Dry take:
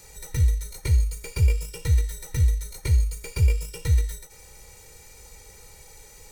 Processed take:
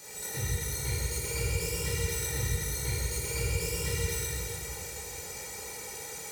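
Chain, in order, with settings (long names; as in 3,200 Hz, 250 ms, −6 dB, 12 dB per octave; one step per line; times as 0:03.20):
high-pass filter 170 Hz 12 dB per octave
brickwall limiter −30 dBFS, peak gain reduction 10 dB
dense smooth reverb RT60 3.4 s, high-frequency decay 0.8×, DRR −9 dB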